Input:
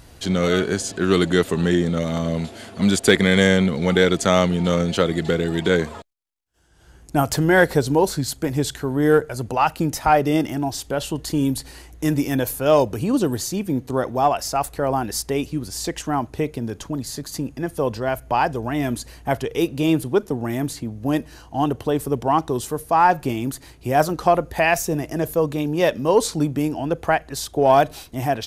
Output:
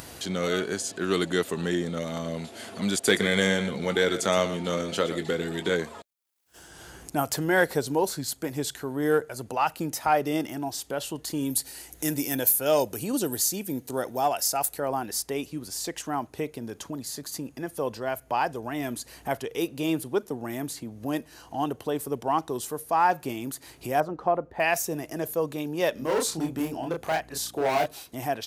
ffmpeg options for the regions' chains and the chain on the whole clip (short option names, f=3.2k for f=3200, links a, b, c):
-filter_complex "[0:a]asettb=1/sr,asplit=3[a][b][c];[a]atrim=end=3.014[d];[b]atrim=start=3.01:end=5.74,asetpts=PTS-STARTPTS,afade=t=in:d=0.004:c=qsin,afade=t=out:st=2.726:d=0.004:c=qsin,asplit=2[e][f];[f]adelay=20,volume=-12dB[g];[e][g]amix=inputs=2:normalize=0,atrim=end_sample=120393,aecho=1:1:119:0.251,atrim=end_sample=120393[h];[c]atrim=start=5.736[i];[d][h]acrossfade=d=0.004:c1=hsin:c2=qsin[j];[j][i]acrossfade=d=0.004:c1=qsin:c2=hsin,asettb=1/sr,asplit=3[k][l][m];[k]atrim=end=11.504[n];[l]atrim=start=11.5:end=14.8,asetpts=PTS-STARTPTS,afade=t=in:d=0.004:c=qsin,afade=t=out:st=3.296:d=0.004:c=qsin,highshelf=f=5.8k:g=11,bandreject=f=1.1k:w=7.5[o];[m]atrim=start=14.796[p];[n][o]acrossfade=d=0.004:c1=hsin:c2=qsin[q];[q][p]acrossfade=d=0.004:c1=qsin:c2=hsin,asettb=1/sr,asplit=3[r][s][t];[r]atrim=end=24.004[u];[s]atrim=start=24:end=24.6,asetpts=PTS-STARTPTS,afade=t=in:d=0.004:c=qsin,afade=t=out:st=0.596:d=0.004:c=qsin,lowpass=1.1k,aemphasis=mode=production:type=75fm[v];[t]atrim=start=24.596[w];[u][v]acrossfade=d=0.004:c1=hsin:c2=qsin[x];[x][w]acrossfade=d=0.004:c1=qsin:c2=hsin,asettb=1/sr,asplit=3[y][z][aa];[y]atrim=end=25.944[ab];[z]atrim=start=25.94:end=27.86,asetpts=PTS-STARTPTS,afade=t=in:d=0.004:c=qsin,afade=t=out:st=1.916:d=0.004:c=qsin,asoftclip=type=hard:threshold=-15.5dB,asplit=2[ac][ad];[ad]adelay=31,volume=-3.5dB[ae];[ac][ae]amix=inputs=2:normalize=0,atrim=end_sample=84672,aeval=exprs='val(0)+0.0112*(sin(2*PI*60*n/s)+sin(2*PI*2*60*n/s)/2+sin(2*PI*3*60*n/s)/3+sin(2*PI*4*60*n/s)/4+sin(2*PI*5*60*n/s)/5)':c=same[af];[aa]atrim=start=27.856[ag];[ab][af]acrossfade=d=0.004:c1=hsin:c2=qsin[ah];[ah][ag]acrossfade=d=0.004:c1=qsin:c2=hsin,highpass=f=250:p=1,highshelf=f=9.7k:g=7,acompressor=mode=upward:threshold=-26dB:ratio=2.5,volume=-6dB"